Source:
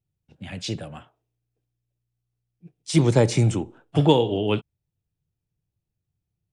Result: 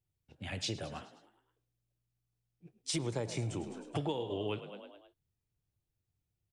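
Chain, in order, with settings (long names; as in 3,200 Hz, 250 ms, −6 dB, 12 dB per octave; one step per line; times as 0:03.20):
parametric band 180 Hz −8 dB 0.82 octaves
on a send: echo with shifted repeats 105 ms, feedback 55%, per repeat +47 Hz, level −16 dB
on the sum: downward compressor 8 to 1, threshold −30 dBFS, peak gain reduction 17.5 dB
level −2.5 dB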